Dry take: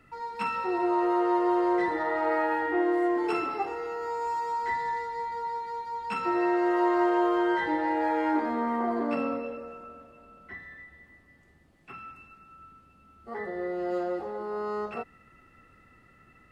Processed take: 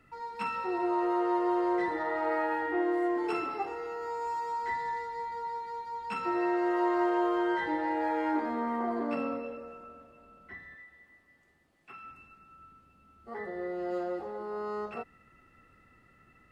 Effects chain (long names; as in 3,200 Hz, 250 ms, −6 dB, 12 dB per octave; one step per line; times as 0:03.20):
0:10.75–0:12.04: low-shelf EQ 250 Hz −11 dB
level −3.5 dB